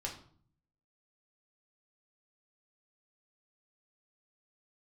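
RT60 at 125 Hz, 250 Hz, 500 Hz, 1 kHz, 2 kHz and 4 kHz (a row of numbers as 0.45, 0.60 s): 0.95, 0.80, 0.55, 0.50, 0.40, 0.40 s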